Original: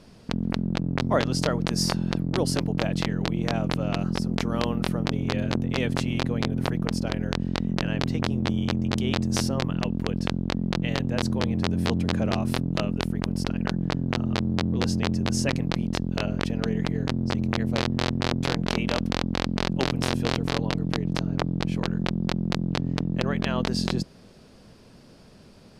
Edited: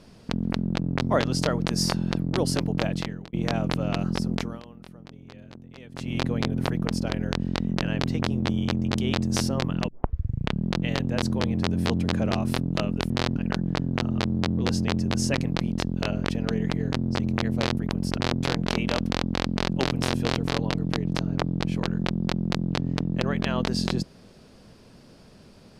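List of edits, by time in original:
2.86–3.33 s: fade out
4.33–6.20 s: dip -19.5 dB, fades 0.28 s
9.88 s: tape start 0.80 s
13.10–13.51 s: swap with 17.92–18.18 s

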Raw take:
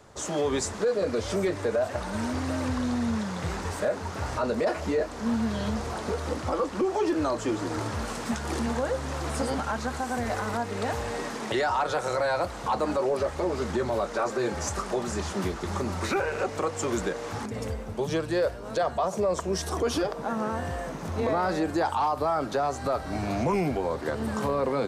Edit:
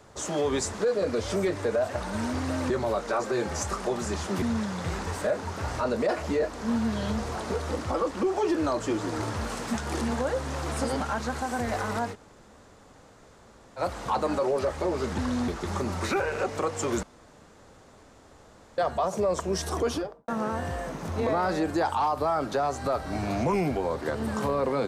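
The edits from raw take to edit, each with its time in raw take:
2.70–3.00 s: swap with 13.76–15.48 s
10.71–12.37 s: room tone, crossfade 0.06 s
17.03–18.78 s: room tone
19.82–20.28 s: studio fade out

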